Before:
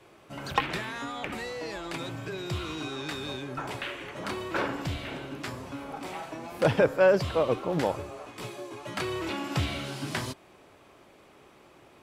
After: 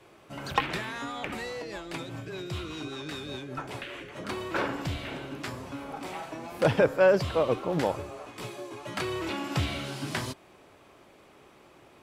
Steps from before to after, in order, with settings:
0:01.62–0:04.29: rotating-speaker cabinet horn 5 Hz

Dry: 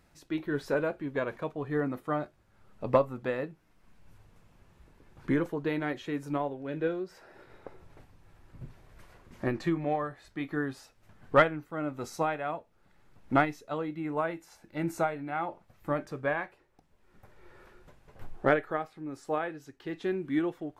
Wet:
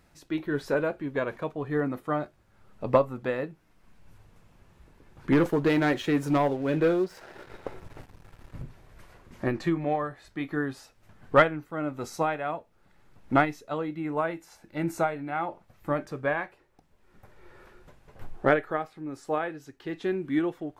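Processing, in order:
0:05.32–0:08.62: leveller curve on the samples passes 2
level +2.5 dB

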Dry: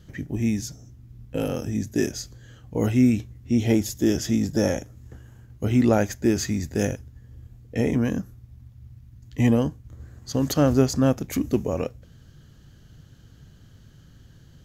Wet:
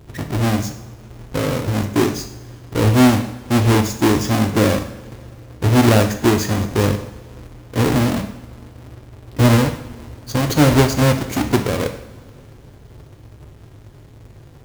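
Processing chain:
each half-wave held at its own peak
parametric band 390 Hz +3 dB 1.2 octaves
coupled-rooms reverb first 0.7 s, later 3.4 s, from −21 dB, DRR 5.5 dB

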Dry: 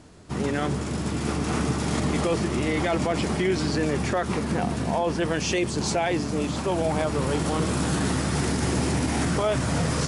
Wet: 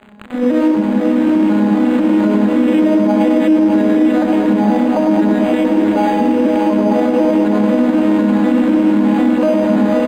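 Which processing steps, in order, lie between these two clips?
vocoder with an arpeggio as carrier minor triad, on G#3, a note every 248 ms
mains-hum notches 60/120/180/240/300/360/420/480 Hz
on a send: feedback echo with a band-pass in the loop 107 ms, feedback 66%, band-pass 600 Hz, level −3 dB
on the sum: surface crackle 260 per second −34 dBFS
in parallel at −12 dB: bit reduction 5 bits
on the sum: low-shelf EQ 140 Hz −7 dB
comb filter 3.6 ms, depth 50%
feedback delay with all-pass diffusion 560 ms, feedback 42%, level −4 dB
boost into a limiter +14 dB
linearly interpolated sample-rate reduction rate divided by 8×
level −3.5 dB

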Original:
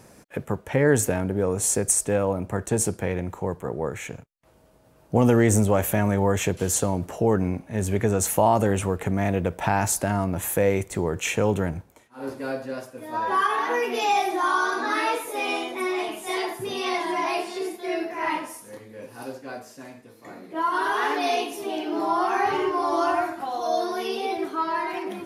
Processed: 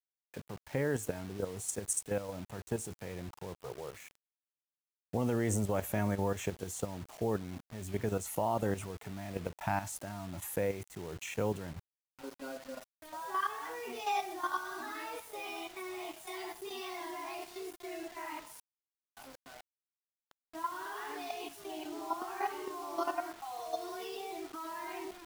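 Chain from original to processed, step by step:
noise reduction from a noise print of the clip's start 18 dB
output level in coarse steps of 11 dB
bit reduction 7 bits
level −9 dB

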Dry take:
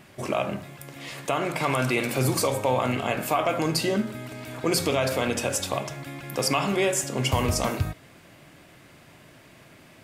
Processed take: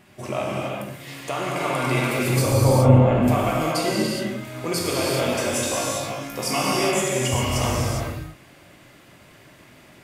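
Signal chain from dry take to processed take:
0:02.46–0:03.28: spectral tilt −4.5 dB per octave
0:05.37–0:06.74: flutter between parallel walls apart 3.2 metres, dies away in 0.27 s
reverb whose tail is shaped and stops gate 440 ms flat, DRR −4.5 dB
level −3.5 dB

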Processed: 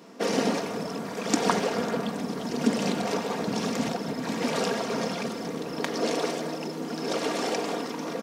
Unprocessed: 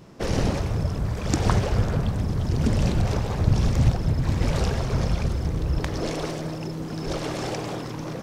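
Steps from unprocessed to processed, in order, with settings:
high-pass filter 220 Hz 24 dB per octave
comb filter 4.3 ms, depth 47%
level +1.5 dB

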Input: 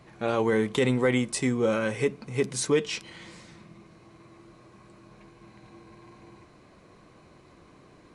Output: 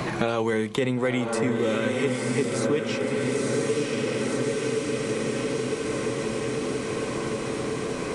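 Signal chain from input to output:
on a send: feedback delay with all-pass diffusion 999 ms, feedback 55%, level −3 dB
on the sum: multiband upward and downward compressor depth 100%

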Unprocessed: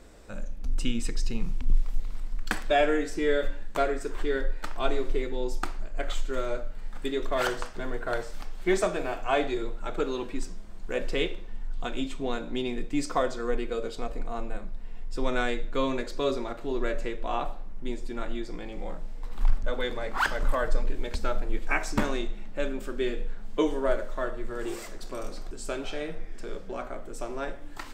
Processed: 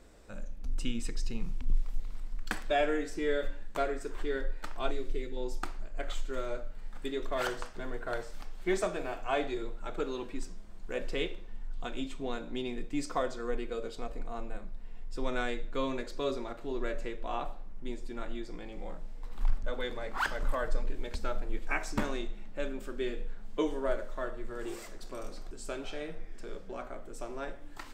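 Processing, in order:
0:04.91–0:05.37: parametric band 940 Hz −10.5 dB 1.5 octaves
level −5.5 dB

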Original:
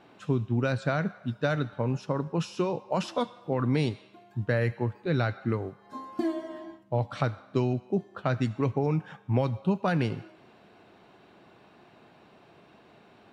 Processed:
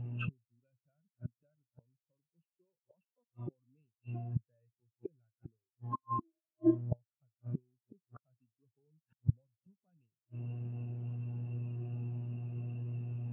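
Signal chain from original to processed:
parametric band 2,700 Hz +13.5 dB 0.37 octaves
hum with harmonics 120 Hz, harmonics 31, −48 dBFS −6 dB per octave
gate with flip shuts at −30 dBFS, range −35 dB
every bin expanded away from the loudest bin 2.5 to 1
level +8.5 dB

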